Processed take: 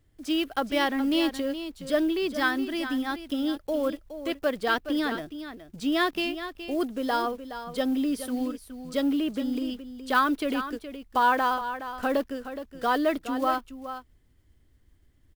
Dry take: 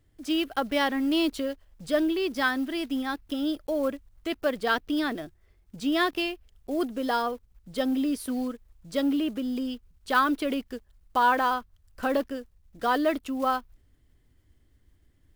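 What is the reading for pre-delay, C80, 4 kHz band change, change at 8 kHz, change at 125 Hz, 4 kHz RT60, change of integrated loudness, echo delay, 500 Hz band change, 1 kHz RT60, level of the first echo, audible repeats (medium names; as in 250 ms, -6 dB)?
no reverb, no reverb, +0.5 dB, +0.5 dB, +0.5 dB, no reverb, 0.0 dB, 419 ms, +0.5 dB, no reverb, -11.0 dB, 1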